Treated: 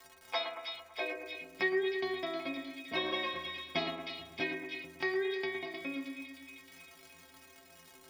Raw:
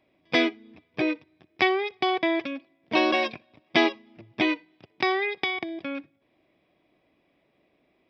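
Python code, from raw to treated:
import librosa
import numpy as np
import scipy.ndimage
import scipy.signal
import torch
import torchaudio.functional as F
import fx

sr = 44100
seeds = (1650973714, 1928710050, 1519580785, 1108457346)

p1 = fx.filter_sweep_highpass(x, sr, from_hz=870.0, to_hz=65.0, start_s=0.85, end_s=2.01, q=3.0)
p2 = fx.dmg_crackle(p1, sr, seeds[0], per_s=130.0, level_db=-37.0)
p3 = fx.stiff_resonator(p2, sr, f0_hz=79.0, decay_s=0.68, stiffness=0.03)
p4 = p3 + fx.echo_split(p3, sr, split_hz=2200.0, low_ms=112, high_ms=311, feedback_pct=52, wet_db=-6.5, dry=0)
p5 = fx.band_squash(p4, sr, depth_pct=40)
y = p5 * 10.0 ** (3.0 / 20.0)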